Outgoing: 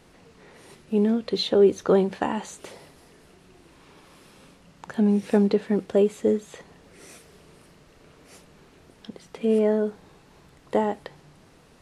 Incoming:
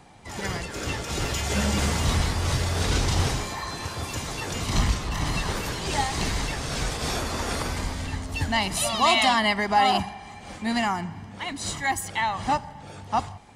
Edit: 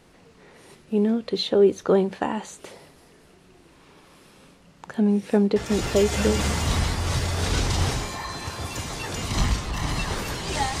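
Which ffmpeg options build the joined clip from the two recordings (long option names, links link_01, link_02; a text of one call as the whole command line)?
ffmpeg -i cue0.wav -i cue1.wav -filter_complex "[0:a]apad=whole_dur=10.8,atrim=end=10.8,atrim=end=6.4,asetpts=PTS-STARTPTS[link_01];[1:a]atrim=start=0.94:end=6.18,asetpts=PTS-STARTPTS[link_02];[link_01][link_02]acrossfade=duration=0.84:curve1=log:curve2=log" out.wav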